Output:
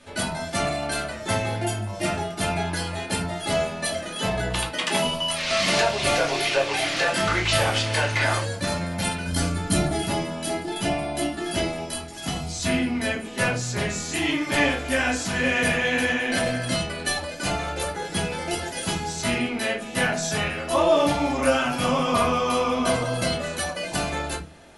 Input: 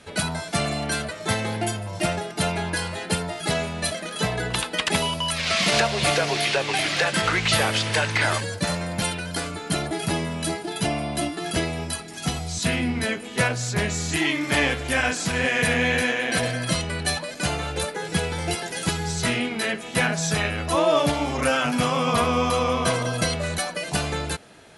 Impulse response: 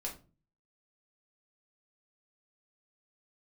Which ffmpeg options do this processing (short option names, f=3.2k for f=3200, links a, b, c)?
-filter_complex "[0:a]asettb=1/sr,asplit=3[a][b][c];[a]atrim=end=4.644[d];[b]atrim=start=4.64:end=5.04,asetpts=PTS-STARTPTS,afade=t=in:d=0.004:c=qsin,afade=t=out:st=0.396:d=0.004:c=qsin,highpass=f=130:w=0.5412,highpass=f=130:w=1.3066[e];[c]atrim=start=5.036[f];[d][e]acrossfade=d=0.004:c1=hsin:c2=qsin[g];[g][f]acrossfade=d=0.004:c1=qsin:c2=hsin,asettb=1/sr,asplit=3[h][i][j];[h]atrim=end=9.264[k];[i]atrim=start=9.26:end=10,asetpts=PTS-STARTPTS,afade=t=in:d=0.004:c=qsin,afade=t=out:st=0.736:d=0.004:c=qsin,bass=f=250:g=10,treble=f=4k:g=5[l];[j]atrim=start=9.996[m];[k][l]acrossfade=d=0.004:c1=hsin:c2=qsin[n];[n][m]acrossfade=d=0.004:c1=qsin:c2=hsin[o];[1:a]atrim=start_sample=2205,asetrate=52920,aresample=44100[p];[o][p]afir=irnorm=-1:irlink=0,volume=1dB"